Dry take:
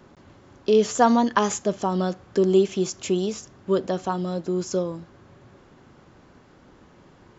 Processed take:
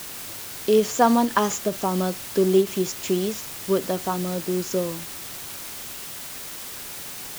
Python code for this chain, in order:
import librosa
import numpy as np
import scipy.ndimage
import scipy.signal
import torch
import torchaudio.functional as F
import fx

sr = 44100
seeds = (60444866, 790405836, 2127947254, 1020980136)

y = fx.quant_dither(x, sr, seeds[0], bits=6, dither='triangular')
y = fx.end_taper(y, sr, db_per_s=270.0)